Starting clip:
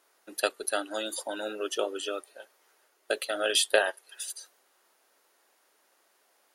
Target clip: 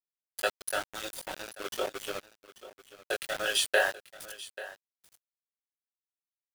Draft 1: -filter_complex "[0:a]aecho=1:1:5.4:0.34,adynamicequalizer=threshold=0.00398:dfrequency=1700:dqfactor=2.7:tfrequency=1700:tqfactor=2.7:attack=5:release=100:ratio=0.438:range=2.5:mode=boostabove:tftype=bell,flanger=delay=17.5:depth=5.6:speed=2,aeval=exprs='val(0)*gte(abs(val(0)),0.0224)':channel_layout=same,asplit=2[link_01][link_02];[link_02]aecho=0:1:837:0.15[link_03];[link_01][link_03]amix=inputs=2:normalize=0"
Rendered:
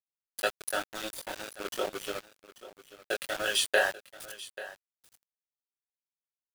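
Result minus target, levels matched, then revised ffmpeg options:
250 Hz band +2.5 dB
-filter_complex "[0:a]aecho=1:1:5.4:0.34,adynamicequalizer=threshold=0.00398:dfrequency=1700:dqfactor=2.7:tfrequency=1700:tqfactor=2.7:attack=5:release=100:ratio=0.438:range=2.5:mode=boostabove:tftype=bell,highpass=frequency=330:width=0.5412,highpass=frequency=330:width=1.3066,flanger=delay=17.5:depth=5.6:speed=2,aeval=exprs='val(0)*gte(abs(val(0)),0.0224)':channel_layout=same,asplit=2[link_01][link_02];[link_02]aecho=0:1:837:0.15[link_03];[link_01][link_03]amix=inputs=2:normalize=0"

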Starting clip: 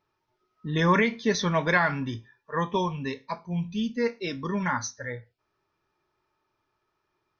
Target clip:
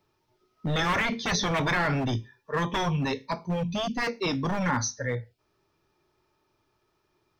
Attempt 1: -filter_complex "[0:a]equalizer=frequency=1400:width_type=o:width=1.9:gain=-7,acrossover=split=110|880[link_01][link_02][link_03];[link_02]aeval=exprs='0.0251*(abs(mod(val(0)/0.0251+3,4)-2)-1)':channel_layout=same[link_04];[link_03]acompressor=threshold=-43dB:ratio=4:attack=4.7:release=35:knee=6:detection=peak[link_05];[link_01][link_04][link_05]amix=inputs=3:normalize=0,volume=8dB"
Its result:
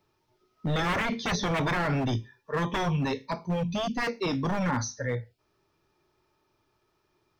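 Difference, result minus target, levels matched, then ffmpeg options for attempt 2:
downward compressor: peak gain reduction +6 dB
-filter_complex "[0:a]equalizer=frequency=1400:width_type=o:width=1.9:gain=-7,acrossover=split=110|880[link_01][link_02][link_03];[link_02]aeval=exprs='0.0251*(abs(mod(val(0)/0.0251+3,4)-2)-1)':channel_layout=same[link_04];[link_03]acompressor=threshold=-35dB:ratio=4:attack=4.7:release=35:knee=6:detection=peak[link_05];[link_01][link_04][link_05]amix=inputs=3:normalize=0,volume=8dB"

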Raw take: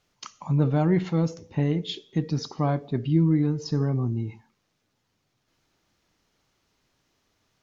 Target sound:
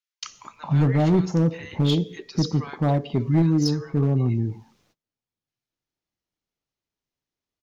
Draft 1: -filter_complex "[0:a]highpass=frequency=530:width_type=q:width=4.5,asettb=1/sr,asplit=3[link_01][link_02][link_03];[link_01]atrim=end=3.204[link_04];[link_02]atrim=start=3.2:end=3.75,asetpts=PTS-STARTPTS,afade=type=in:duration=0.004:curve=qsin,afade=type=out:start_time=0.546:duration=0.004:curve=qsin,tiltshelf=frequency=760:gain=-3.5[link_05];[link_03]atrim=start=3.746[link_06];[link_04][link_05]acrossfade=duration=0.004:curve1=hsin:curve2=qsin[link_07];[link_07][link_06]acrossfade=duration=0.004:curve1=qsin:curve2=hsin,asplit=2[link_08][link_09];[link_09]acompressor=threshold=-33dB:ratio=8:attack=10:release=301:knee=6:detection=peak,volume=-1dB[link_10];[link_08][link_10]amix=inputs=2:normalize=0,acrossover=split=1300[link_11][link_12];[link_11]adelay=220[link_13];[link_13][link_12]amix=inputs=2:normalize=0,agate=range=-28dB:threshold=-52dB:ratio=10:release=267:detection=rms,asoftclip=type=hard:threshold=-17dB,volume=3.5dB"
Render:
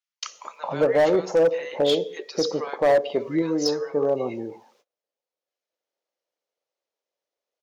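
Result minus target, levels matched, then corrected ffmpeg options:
500 Hz band +9.0 dB; downward compressor: peak gain reduction −7.5 dB
-filter_complex "[0:a]asettb=1/sr,asplit=3[link_01][link_02][link_03];[link_01]atrim=end=3.204[link_04];[link_02]atrim=start=3.2:end=3.75,asetpts=PTS-STARTPTS,afade=type=in:duration=0.004:curve=qsin,afade=type=out:start_time=0.546:duration=0.004:curve=qsin,tiltshelf=frequency=760:gain=-3.5[link_05];[link_03]atrim=start=3.746[link_06];[link_04][link_05]acrossfade=duration=0.004:curve1=hsin:curve2=qsin[link_07];[link_07][link_06]acrossfade=duration=0.004:curve1=qsin:curve2=hsin,asplit=2[link_08][link_09];[link_09]acompressor=threshold=-42.5dB:ratio=8:attack=10:release=301:knee=6:detection=peak,volume=-1dB[link_10];[link_08][link_10]amix=inputs=2:normalize=0,acrossover=split=1300[link_11][link_12];[link_11]adelay=220[link_13];[link_13][link_12]amix=inputs=2:normalize=0,agate=range=-28dB:threshold=-52dB:ratio=10:release=267:detection=rms,asoftclip=type=hard:threshold=-17dB,volume=3.5dB"

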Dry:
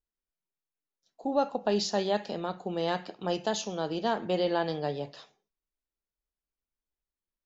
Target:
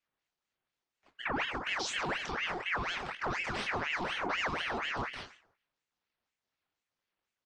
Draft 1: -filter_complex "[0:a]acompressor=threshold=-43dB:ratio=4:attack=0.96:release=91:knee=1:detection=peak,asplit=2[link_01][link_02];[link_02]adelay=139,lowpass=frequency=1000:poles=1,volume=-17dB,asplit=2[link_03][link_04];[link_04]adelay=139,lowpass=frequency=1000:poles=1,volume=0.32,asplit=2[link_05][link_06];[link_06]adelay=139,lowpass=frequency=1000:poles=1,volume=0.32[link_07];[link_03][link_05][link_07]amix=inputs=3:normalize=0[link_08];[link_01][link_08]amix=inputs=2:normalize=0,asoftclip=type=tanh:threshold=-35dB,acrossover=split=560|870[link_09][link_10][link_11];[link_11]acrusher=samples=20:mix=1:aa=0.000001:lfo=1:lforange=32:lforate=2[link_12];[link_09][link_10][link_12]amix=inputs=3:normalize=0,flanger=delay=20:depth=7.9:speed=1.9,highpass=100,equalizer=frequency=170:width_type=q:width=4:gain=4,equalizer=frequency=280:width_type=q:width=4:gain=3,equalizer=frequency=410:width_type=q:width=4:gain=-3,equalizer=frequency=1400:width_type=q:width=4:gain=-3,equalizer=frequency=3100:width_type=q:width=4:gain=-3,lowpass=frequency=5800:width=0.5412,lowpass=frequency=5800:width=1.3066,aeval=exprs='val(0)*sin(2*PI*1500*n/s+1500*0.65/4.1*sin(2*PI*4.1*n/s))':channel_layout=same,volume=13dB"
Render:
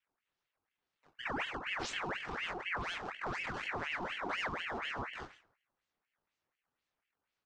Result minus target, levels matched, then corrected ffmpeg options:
sample-and-hold swept by an LFO: distortion +15 dB; downward compressor: peak gain reduction +5.5 dB
-filter_complex "[0:a]acompressor=threshold=-35.5dB:ratio=4:attack=0.96:release=91:knee=1:detection=peak,asplit=2[link_01][link_02];[link_02]adelay=139,lowpass=frequency=1000:poles=1,volume=-17dB,asplit=2[link_03][link_04];[link_04]adelay=139,lowpass=frequency=1000:poles=1,volume=0.32,asplit=2[link_05][link_06];[link_06]adelay=139,lowpass=frequency=1000:poles=1,volume=0.32[link_07];[link_03][link_05][link_07]amix=inputs=3:normalize=0[link_08];[link_01][link_08]amix=inputs=2:normalize=0,asoftclip=type=tanh:threshold=-35dB,acrossover=split=560|870[link_09][link_10][link_11];[link_11]acrusher=samples=5:mix=1:aa=0.000001:lfo=1:lforange=8:lforate=2[link_12];[link_09][link_10][link_12]amix=inputs=3:normalize=0,flanger=delay=20:depth=7.9:speed=1.9,highpass=100,equalizer=frequency=170:width_type=q:width=4:gain=4,equalizer=frequency=280:width_type=q:width=4:gain=3,equalizer=frequency=410:width_type=q:width=4:gain=-3,equalizer=frequency=1400:width_type=q:width=4:gain=-3,equalizer=frequency=3100:width_type=q:width=4:gain=-3,lowpass=frequency=5800:width=0.5412,lowpass=frequency=5800:width=1.3066,aeval=exprs='val(0)*sin(2*PI*1500*n/s+1500*0.65/4.1*sin(2*PI*4.1*n/s))':channel_layout=same,volume=13dB"

